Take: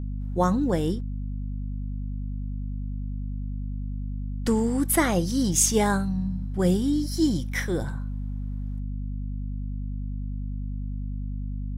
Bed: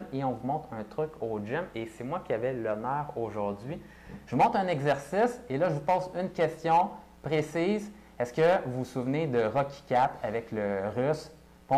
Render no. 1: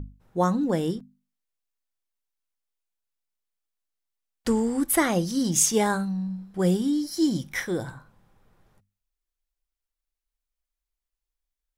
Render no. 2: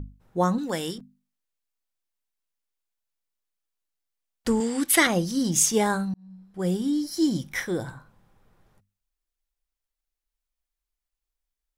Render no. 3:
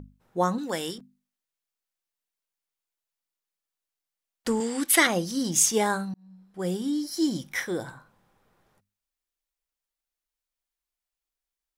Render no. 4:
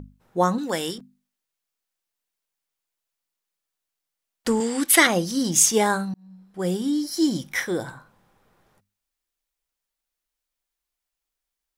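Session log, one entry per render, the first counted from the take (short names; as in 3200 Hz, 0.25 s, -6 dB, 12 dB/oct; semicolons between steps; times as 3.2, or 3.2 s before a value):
notches 50/100/150/200/250 Hz
0.58–0.98 tilt shelf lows -8 dB, about 890 Hz; 4.6–5.07 weighting filter D; 6.14–6.97 fade in
low shelf 150 Hz -12 dB
gain +4 dB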